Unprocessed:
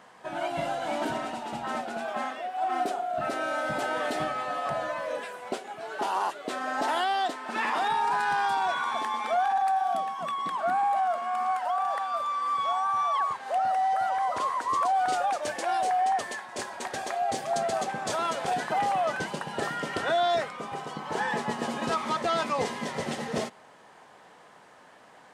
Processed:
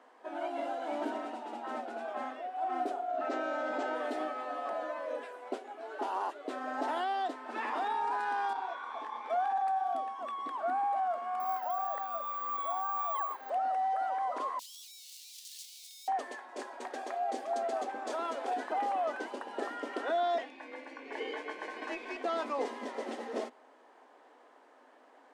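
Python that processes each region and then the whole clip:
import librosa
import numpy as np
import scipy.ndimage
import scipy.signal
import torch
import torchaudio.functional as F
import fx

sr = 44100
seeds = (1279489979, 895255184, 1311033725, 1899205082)

y = fx.chain(x, sr, fx.steep_lowpass(hz=7900.0, slope=48),
    fx.env_flatten(amount_pct=100), at=(3.08, 3.95))
y = fx.chain(y, sr, fx.highpass(hz=300.0, slope=12),
    fx.air_absorb(metres=57.0),
    fx.detune_double(cents=58), at=(8.53, 9.3))
y = fx.chain(y, sr, fx.ellip_highpass(hz=250.0, order=4, stop_db=40),
    fx.resample_bad(factor=2, down='none', up='zero_stuff'), at=(11.4, 13.5))
y = fx.chain(y, sr, fx.clip_1bit(),
    fx.cheby2_highpass(hz=1500.0, order=4, stop_db=50), at=(14.59, 16.08))
y = fx.chain(y, sr, fx.lowpass(hz=8600.0, slope=12),
    fx.ring_mod(carrier_hz=1300.0), at=(20.38, 22.24))
y = scipy.signal.sosfilt(scipy.signal.ellip(4, 1.0, 40, 260.0, 'highpass', fs=sr, output='sos'), y)
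y = fx.tilt_eq(y, sr, slope=-2.5)
y = y * 10.0 ** (-6.5 / 20.0)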